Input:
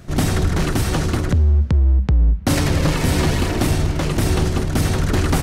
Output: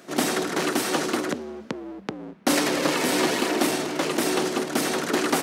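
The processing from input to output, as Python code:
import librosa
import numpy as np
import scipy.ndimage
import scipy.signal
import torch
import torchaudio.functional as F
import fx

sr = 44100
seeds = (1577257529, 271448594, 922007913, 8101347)

y = scipy.signal.sosfilt(scipy.signal.butter(4, 260.0, 'highpass', fs=sr, output='sos'), x)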